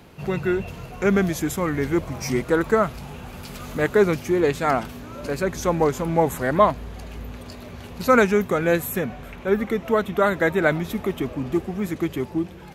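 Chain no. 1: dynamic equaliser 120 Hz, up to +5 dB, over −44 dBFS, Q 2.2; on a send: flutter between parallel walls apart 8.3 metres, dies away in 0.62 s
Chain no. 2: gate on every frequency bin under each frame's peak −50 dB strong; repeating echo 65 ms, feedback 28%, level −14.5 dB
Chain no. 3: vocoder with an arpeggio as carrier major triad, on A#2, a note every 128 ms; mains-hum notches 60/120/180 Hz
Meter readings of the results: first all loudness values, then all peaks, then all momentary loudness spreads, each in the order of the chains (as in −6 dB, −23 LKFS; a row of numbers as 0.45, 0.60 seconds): −20.5, −22.5, −24.5 LKFS; −3.0, −3.5, −7.5 dBFS; 15, 17, 18 LU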